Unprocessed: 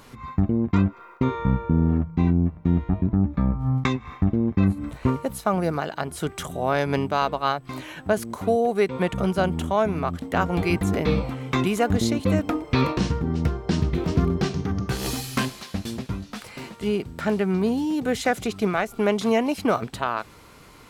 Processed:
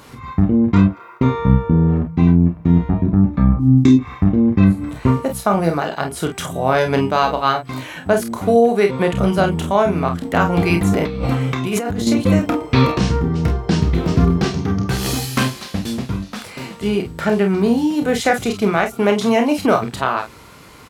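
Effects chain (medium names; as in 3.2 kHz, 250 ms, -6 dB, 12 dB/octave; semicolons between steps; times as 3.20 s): 3.59–3.99 s: FFT filter 180 Hz 0 dB, 310 Hz +15 dB, 480 Hz -7 dB, 1.2 kHz -16 dB, 6.5 kHz +1 dB; on a send: early reflections 30 ms -7 dB, 47 ms -9 dB; 11.01–12.07 s: on the sum: compressor with a negative ratio -26 dBFS, ratio -1; high-pass 44 Hz; trim +5.5 dB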